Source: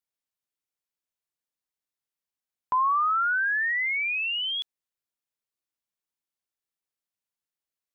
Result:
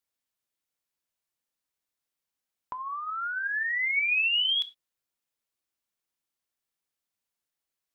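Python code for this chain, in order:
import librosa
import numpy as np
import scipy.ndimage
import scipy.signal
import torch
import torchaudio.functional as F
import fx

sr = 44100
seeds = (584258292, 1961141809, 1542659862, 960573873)

y = fx.over_compress(x, sr, threshold_db=-28.0, ratio=-0.5)
y = fx.rev_gated(y, sr, seeds[0], gate_ms=130, shape='falling', drr_db=11.0)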